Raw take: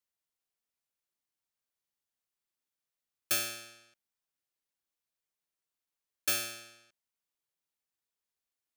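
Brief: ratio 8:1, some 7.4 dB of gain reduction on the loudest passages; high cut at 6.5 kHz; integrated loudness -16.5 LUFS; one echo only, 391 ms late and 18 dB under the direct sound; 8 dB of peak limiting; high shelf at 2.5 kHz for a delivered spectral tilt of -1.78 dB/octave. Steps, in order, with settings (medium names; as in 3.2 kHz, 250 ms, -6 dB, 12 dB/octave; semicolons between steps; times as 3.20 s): low-pass 6.5 kHz; treble shelf 2.5 kHz +4.5 dB; compression 8:1, threshold -34 dBFS; peak limiter -30 dBFS; delay 391 ms -18 dB; trim +26.5 dB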